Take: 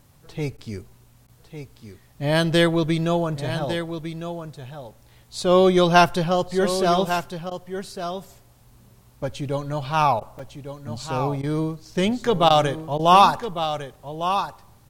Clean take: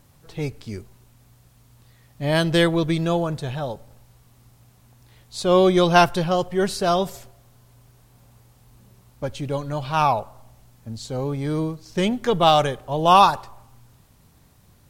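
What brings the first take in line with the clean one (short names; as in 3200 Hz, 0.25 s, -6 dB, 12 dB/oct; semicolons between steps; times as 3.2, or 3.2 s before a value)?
interpolate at 1.29/10.39, 4.5 ms; interpolate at 0.57/1.27/7.5/10.2/11.42/12.49/12.98, 11 ms; inverse comb 1.153 s -9.5 dB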